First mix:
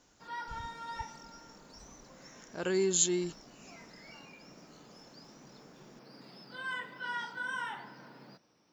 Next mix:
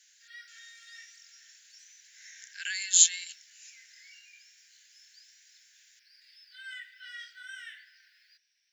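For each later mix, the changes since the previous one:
speech +8.5 dB; master: add steep high-pass 1600 Hz 96 dB/oct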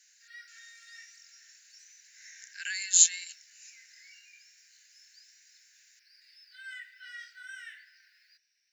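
master: add bell 3300 Hz -10.5 dB 0.24 oct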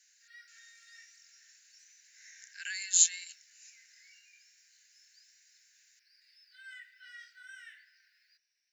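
speech -3.5 dB; background -5.5 dB

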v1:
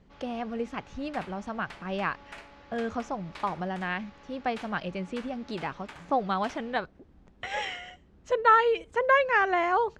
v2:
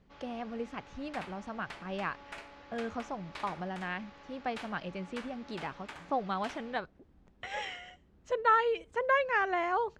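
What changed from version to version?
speech -5.5 dB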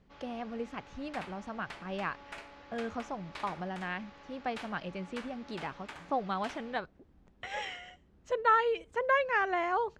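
speech: remove LPF 12000 Hz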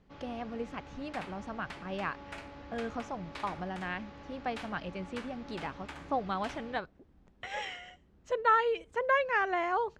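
first sound: remove HPF 760 Hz 6 dB/oct

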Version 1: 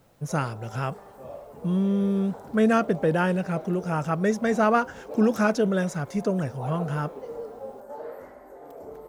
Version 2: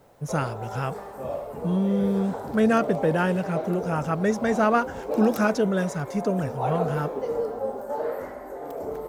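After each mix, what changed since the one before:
background +9.0 dB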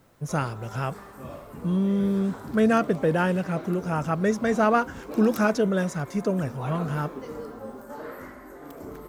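background: add band shelf 610 Hz -11.5 dB 1.3 oct

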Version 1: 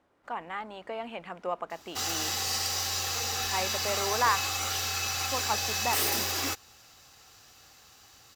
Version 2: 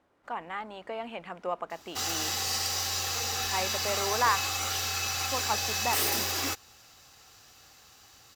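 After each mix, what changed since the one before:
none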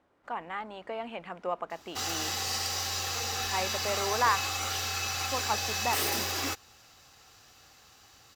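master: add high shelf 5700 Hz -4.5 dB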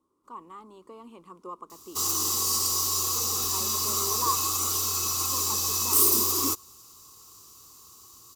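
speech -8.5 dB; master: add EQ curve 140 Hz 0 dB, 370 Hz +9 dB, 720 Hz -15 dB, 1100 Hz +11 dB, 1600 Hz -18 dB, 9100 Hz +15 dB

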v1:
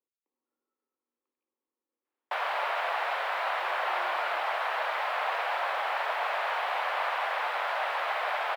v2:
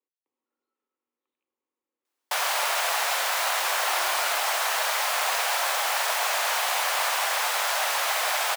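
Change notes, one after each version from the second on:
master: remove air absorption 490 m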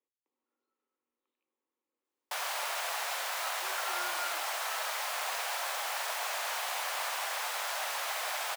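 first sound -9.5 dB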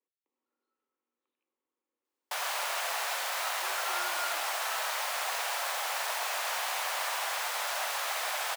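reverb: on, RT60 0.55 s

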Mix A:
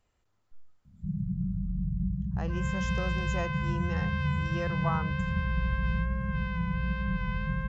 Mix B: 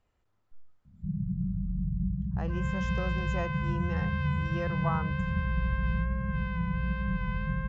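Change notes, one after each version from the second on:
master: add LPF 2900 Hz 6 dB/oct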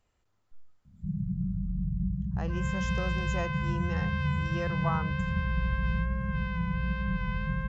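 master: remove LPF 2900 Hz 6 dB/oct

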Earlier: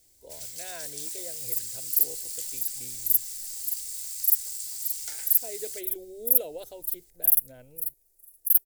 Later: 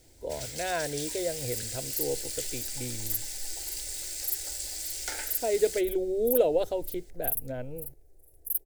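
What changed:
second sound: add tilt shelf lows +7 dB, about 650 Hz; master: remove pre-emphasis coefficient 0.8

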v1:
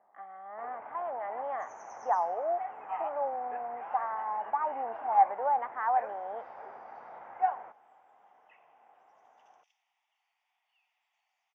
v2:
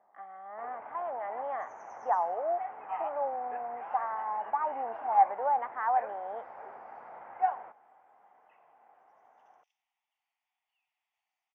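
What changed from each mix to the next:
second sound -8.0 dB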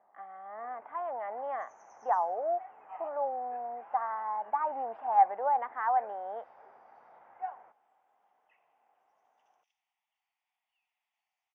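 first sound -10.0 dB

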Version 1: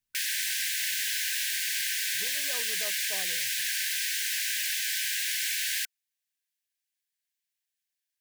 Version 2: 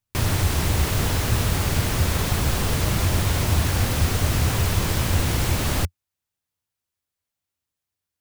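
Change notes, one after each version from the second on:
background: remove brick-wall FIR high-pass 1500 Hz; master: add bell 88 Hz +15 dB 1.2 oct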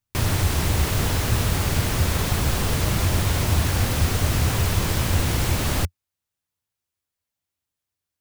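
none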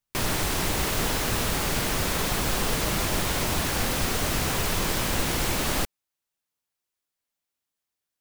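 master: add bell 88 Hz -15 dB 1.2 oct

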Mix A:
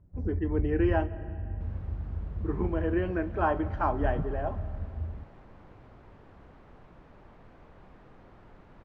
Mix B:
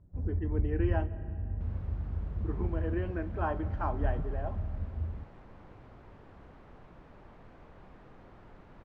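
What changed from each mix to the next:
speech -6.5 dB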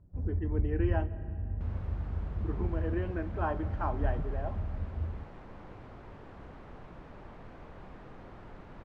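second sound +5.0 dB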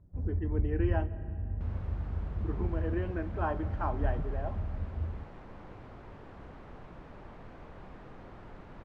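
none

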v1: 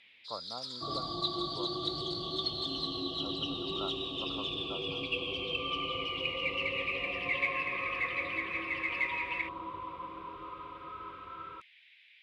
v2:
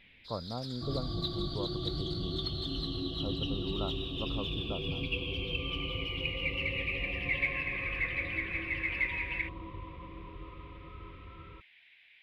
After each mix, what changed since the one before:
first sound +7.0 dB; second sound -9.0 dB; master: remove weighting filter ITU-R 468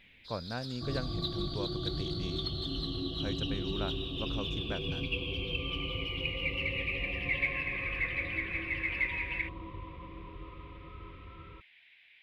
speech: remove brick-wall FIR low-pass 1400 Hz

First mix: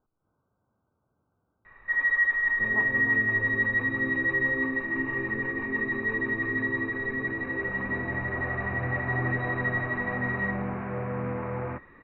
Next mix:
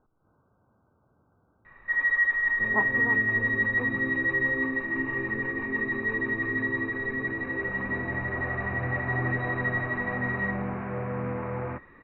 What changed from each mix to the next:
speech +9.0 dB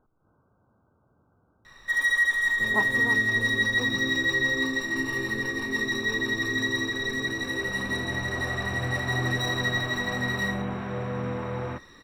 master: remove elliptic low-pass 2400 Hz, stop band 80 dB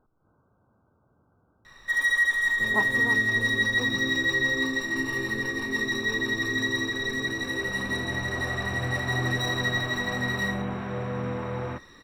none

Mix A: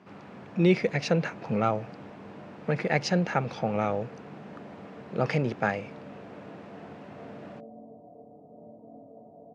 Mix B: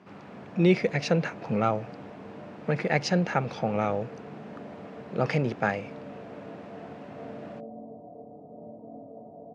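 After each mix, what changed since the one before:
speech: send +6.0 dB; background +4.5 dB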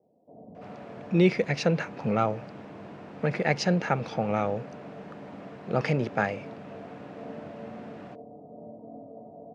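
speech: entry +0.55 s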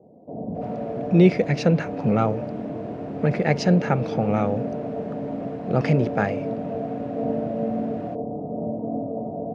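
background +11.5 dB; master: add low shelf 470 Hz +8 dB

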